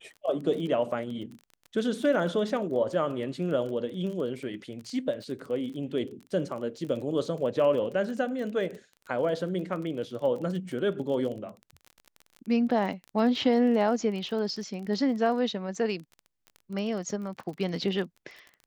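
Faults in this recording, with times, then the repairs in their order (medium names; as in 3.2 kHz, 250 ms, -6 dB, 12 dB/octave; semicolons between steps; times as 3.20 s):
crackle 25 per s -36 dBFS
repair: de-click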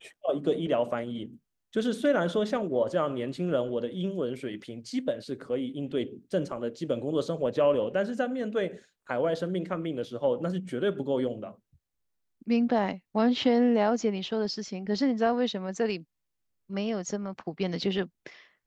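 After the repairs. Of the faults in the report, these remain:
nothing left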